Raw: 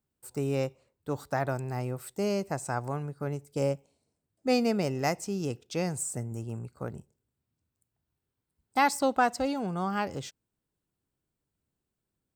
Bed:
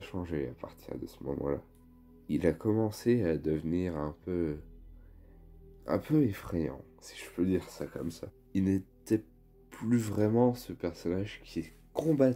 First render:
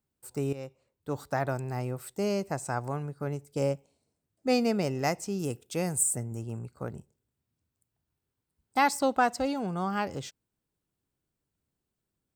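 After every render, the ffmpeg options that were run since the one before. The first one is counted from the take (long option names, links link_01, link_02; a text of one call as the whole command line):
ffmpeg -i in.wav -filter_complex "[0:a]asettb=1/sr,asplit=3[link_01][link_02][link_03];[link_01]atrim=end=5.394[link_04];[link_02]atrim=start=5.39:end=6.16,asetpts=PTS-STARTPTS,afade=type=in:duration=0.004:curve=qsin,afade=type=out:start_time=0.766:duration=0.004:curve=qsin,highshelf=frequency=7300:width_type=q:width=1.5:gain=9[link_05];[link_03]atrim=start=6.156[link_06];[link_04][link_05]acrossfade=duration=0.004:curve1=hsin:curve2=qsin[link_07];[link_07][link_06]acrossfade=duration=0.004:curve1=qsin:curve2=hsin,asplit=2[link_08][link_09];[link_08]atrim=end=0.53,asetpts=PTS-STARTPTS,afade=type=out:start_time=0.526:duration=0.004:curve=hsin:silence=0.188365[link_10];[link_09]atrim=start=0.53,asetpts=PTS-STARTPTS,afade=type=in:duration=0.65:silence=0.188365[link_11];[link_10][link_11]concat=n=2:v=0:a=1" out.wav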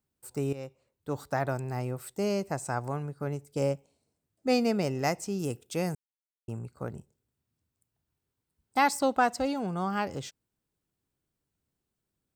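ffmpeg -i in.wav -filter_complex "[0:a]asplit=3[link_01][link_02][link_03];[link_01]atrim=end=5.95,asetpts=PTS-STARTPTS,afade=type=out:start_time=5.946:duration=0.004:curve=hsin[link_04];[link_02]atrim=start=5.95:end=6.48,asetpts=PTS-STARTPTS,volume=0[link_05];[link_03]atrim=start=6.48,asetpts=PTS-STARTPTS,afade=type=in:duration=0.004:curve=hsin[link_06];[link_04][link_05][link_06]concat=n=3:v=0:a=1" out.wav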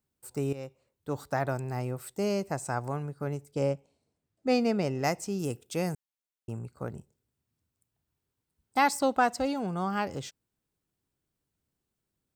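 ffmpeg -i in.wav -filter_complex "[0:a]asettb=1/sr,asplit=3[link_01][link_02][link_03];[link_01]atrim=end=3.514[link_04];[link_02]atrim=start=3.51:end=5.04,asetpts=PTS-STARTPTS,afade=type=in:duration=0.004:curve=qsin,afade=type=out:start_time=1.526:duration=0.004:curve=qsin,highshelf=frequency=8000:gain=-11[link_05];[link_03]atrim=start=5.036[link_06];[link_04][link_05]acrossfade=duration=0.004:curve1=hsin:curve2=qsin[link_07];[link_07][link_06]acrossfade=duration=0.004:curve1=qsin:curve2=hsin" out.wav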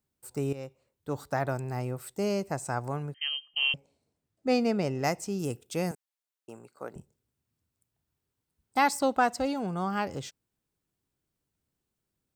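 ffmpeg -i in.wav -filter_complex "[0:a]asettb=1/sr,asplit=3[link_01][link_02][link_03];[link_01]atrim=end=3.144[link_04];[link_02]atrim=start=3.14:end=3.74,asetpts=PTS-STARTPTS,afade=type=in:duration=0.004:curve=qsin,afade=type=out:start_time=0.596:duration=0.004:curve=qsin,lowpass=frequency=2800:width_type=q:width=0.5098,lowpass=frequency=2800:width_type=q:width=0.6013,lowpass=frequency=2800:width_type=q:width=0.9,lowpass=frequency=2800:width_type=q:width=2.563,afreqshift=-3300[link_05];[link_03]atrim=start=3.736[link_06];[link_04][link_05]acrossfade=duration=0.004:curve1=hsin:curve2=qsin[link_07];[link_07][link_06]acrossfade=duration=0.004:curve1=qsin:curve2=hsin,asettb=1/sr,asplit=3[link_08][link_09][link_10];[link_08]atrim=end=5.914[link_11];[link_09]atrim=start=5.91:end=6.96,asetpts=PTS-STARTPTS,afade=type=in:duration=0.004:curve=qsin,afade=type=out:start_time=1.046:duration=0.004:curve=qsin,highpass=370[link_12];[link_10]atrim=start=6.956[link_13];[link_11][link_12]acrossfade=duration=0.004:curve1=hsin:curve2=qsin[link_14];[link_14][link_13]acrossfade=duration=0.004:curve1=qsin:curve2=hsin" out.wav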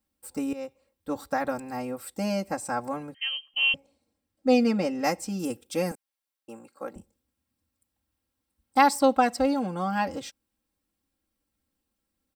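ffmpeg -i in.wav -af "bandreject=frequency=6700:width=10,aecho=1:1:3.7:1" out.wav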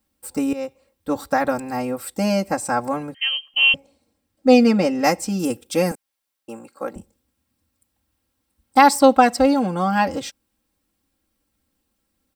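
ffmpeg -i in.wav -af "volume=8dB,alimiter=limit=-1dB:level=0:latency=1" out.wav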